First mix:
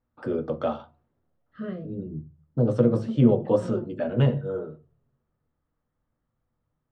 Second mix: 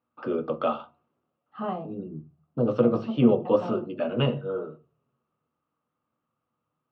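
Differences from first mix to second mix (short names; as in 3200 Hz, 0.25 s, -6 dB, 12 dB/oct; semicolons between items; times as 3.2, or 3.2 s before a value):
second voice: remove Chebyshev band-stop 520–1400 Hz, order 2; master: add speaker cabinet 180–4800 Hz, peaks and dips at 1200 Hz +9 dB, 1800 Hz -6 dB, 2700 Hz +10 dB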